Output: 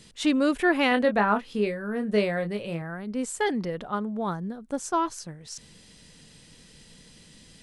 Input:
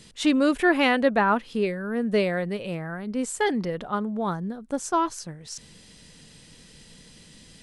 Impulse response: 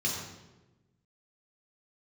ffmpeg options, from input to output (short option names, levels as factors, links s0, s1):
-filter_complex "[0:a]asettb=1/sr,asplit=3[s0][s1][s2];[s0]atrim=end=0.894[s3];[s1]atrim=start=0.89:end=2.82,asetpts=PTS-STARTPTS,afade=t=in:d=0.004:c=qsin,afade=t=out:st=1.926:d=0.004:c=qsin,asplit=2[s4][s5];[s5]adelay=24,volume=0.422[s6];[s4][s6]amix=inputs=2:normalize=0,atrim=end_sample=85113[s7];[s2]atrim=start=2.816[s8];[s3][s7]acrossfade=d=0.004:c1=hsin:c2=qsin[s9];[s9][s8]acrossfade=d=0.004:c1=qsin:c2=hsin,volume=0.794"